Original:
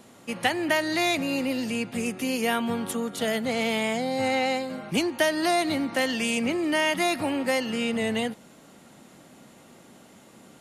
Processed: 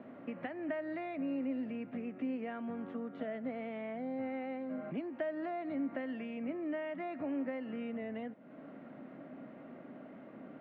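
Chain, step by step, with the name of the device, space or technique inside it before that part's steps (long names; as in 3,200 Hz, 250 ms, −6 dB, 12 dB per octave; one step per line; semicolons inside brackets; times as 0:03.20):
bass amplifier (downward compressor 4 to 1, threshold −41 dBFS, peak gain reduction 18.5 dB; loudspeaker in its box 87–2,100 Hz, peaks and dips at 90 Hz −9 dB, 270 Hz +9 dB, 620 Hz +8 dB, 880 Hz −5 dB)
level −2 dB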